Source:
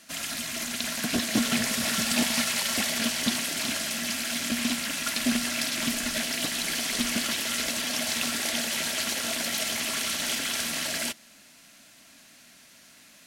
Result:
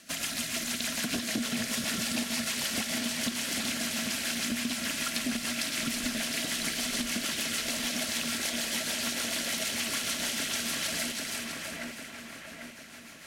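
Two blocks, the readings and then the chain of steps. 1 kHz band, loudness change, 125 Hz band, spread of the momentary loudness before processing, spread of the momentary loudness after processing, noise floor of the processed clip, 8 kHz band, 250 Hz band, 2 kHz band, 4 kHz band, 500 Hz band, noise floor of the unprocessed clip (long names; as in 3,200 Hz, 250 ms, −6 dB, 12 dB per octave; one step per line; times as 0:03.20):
−4.5 dB, −3.5 dB, −2.5 dB, 4 LU, 7 LU, −46 dBFS, −3.0 dB, −3.5 dB, −3.0 dB, −3.0 dB, −3.5 dB, −54 dBFS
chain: rotating-speaker cabinet horn 6.7 Hz
echo with a time of its own for lows and highs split 2,500 Hz, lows 796 ms, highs 324 ms, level −7 dB
downward compressor, threshold −32 dBFS, peak gain reduction 10.5 dB
level +3.5 dB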